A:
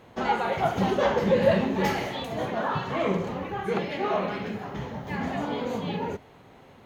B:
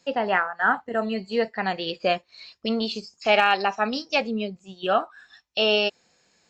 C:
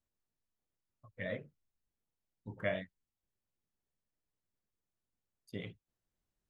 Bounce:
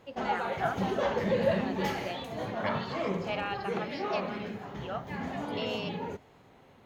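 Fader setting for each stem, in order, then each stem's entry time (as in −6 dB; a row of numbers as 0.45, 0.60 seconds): −6.0, −16.0, +0.5 decibels; 0.00, 0.00, 0.00 seconds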